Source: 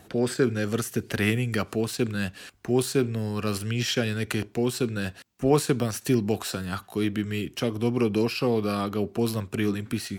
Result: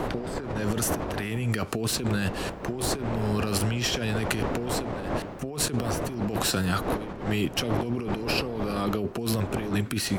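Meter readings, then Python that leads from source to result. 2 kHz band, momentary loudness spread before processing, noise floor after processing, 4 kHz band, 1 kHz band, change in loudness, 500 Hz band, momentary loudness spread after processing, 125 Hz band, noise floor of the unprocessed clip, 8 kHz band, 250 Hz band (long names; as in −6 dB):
−0.5 dB, 6 LU, −38 dBFS, +2.0 dB, +3.0 dB, −1.5 dB, −3.5 dB, 5 LU, −0.5 dB, −54 dBFS, +3.5 dB, −2.5 dB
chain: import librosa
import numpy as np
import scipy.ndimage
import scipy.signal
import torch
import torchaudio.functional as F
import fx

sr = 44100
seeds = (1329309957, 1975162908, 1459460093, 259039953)

y = fx.dmg_wind(x, sr, seeds[0], corner_hz=610.0, level_db=-29.0)
y = fx.over_compress(y, sr, threshold_db=-30.0, ratio=-1.0)
y = F.gain(torch.from_numpy(y), 1.5).numpy()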